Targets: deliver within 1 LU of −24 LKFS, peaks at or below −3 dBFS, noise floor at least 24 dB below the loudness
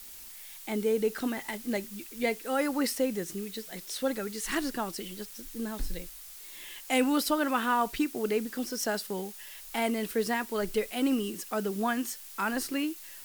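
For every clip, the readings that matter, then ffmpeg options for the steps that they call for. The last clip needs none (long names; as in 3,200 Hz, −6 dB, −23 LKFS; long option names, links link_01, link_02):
background noise floor −47 dBFS; target noise floor −55 dBFS; integrated loudness −31.0 LKFS; sample peak −15.0 dBFS; target loudness −24.0 LKFS
→ -af "afftdn=noise_reduction=8:noise_floor=-47"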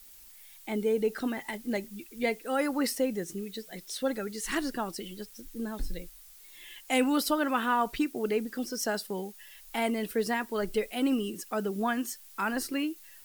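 background noise floor −52 dBFS; target noise floor −56 dBFS
→ -af "afftdn=noise_reduction=6:noise_floor=-52"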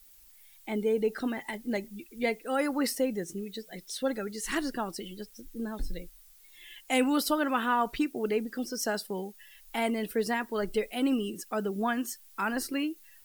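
background noise floor −56 dBFS; integrated loudness −31.5 LKFS; sample peak −15.0 dBFS; target loudness −24.0 LKFS
→ -af "volume=7.5dB"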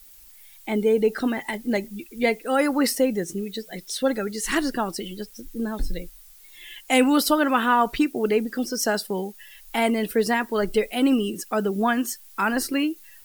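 integrated loudness −24.0 LKFS; sample peak −7.5 dBFS; background noise floor −49 dBFS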